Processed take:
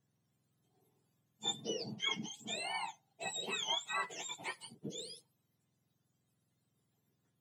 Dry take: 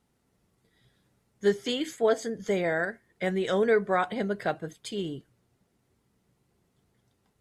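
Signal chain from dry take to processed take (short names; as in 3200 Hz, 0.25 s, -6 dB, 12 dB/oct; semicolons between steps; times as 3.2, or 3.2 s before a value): spectrum mirrored in octaves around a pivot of 1200 Hz; gain -8.5 dB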